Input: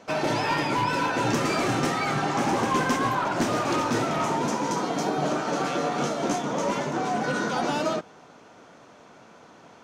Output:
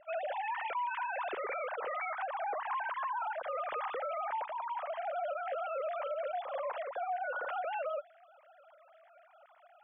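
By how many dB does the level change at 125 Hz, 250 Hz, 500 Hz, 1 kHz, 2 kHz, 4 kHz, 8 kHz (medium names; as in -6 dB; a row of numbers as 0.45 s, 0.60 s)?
under -40 dB, under -35 dB, -9.5 dB, -9.0 dB, -10.5 dB, -21.0 dB, under -40 dB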